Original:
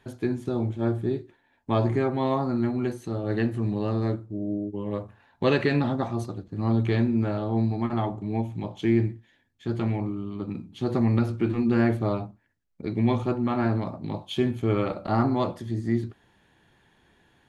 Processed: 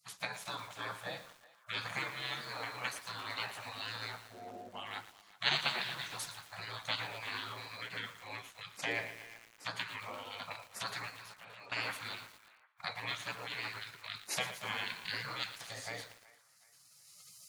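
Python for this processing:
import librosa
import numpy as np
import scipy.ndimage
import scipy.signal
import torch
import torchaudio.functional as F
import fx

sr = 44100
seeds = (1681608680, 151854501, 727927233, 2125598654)

y = fx.recorder_agc(x, sr, target_db=-15.5, rise_db_per_s=14.0, max_gain_db=30)
y = scipy.signal.sosfilt(scipy.signal.butter(4, 300.0, 'highpass', fs=sr, output='sos'), y)
y = fx.spec_gate(y, sr, threshold_db=-25, keep='weak')
y = fx.level_steps(y, sr, step_db=20, at=(11.1, 11.72))
y = fx.echo_banded(y, sr, ms=374, feedback_pct=45, hz=1300.0, wet_db=-18.5)
y = fx.echo_crushed(y, sr, ms=115, feedback_pct=80, bits=9, wet_db=-11.5)
y = y * librosa.db_to_amplitude(7.0)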